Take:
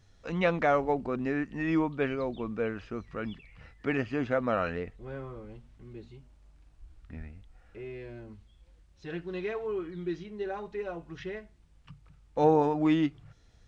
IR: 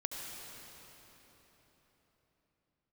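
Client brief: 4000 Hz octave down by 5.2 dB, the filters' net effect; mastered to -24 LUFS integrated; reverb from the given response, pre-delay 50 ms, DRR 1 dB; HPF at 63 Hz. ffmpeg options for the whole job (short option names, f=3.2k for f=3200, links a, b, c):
-filter_complex "[0:a]highpass=63,equalizer=f=4k:t=o:g=-7.5,asplit=2[a][b];[1:a]atrim=start_sample=2205,adelay=50[c];[b][c]afir=irnorm=-1:irlink=0,volume=-2.5dB[d];[a][d]amix=inputs=2:normalize=0,volume=5.5dB"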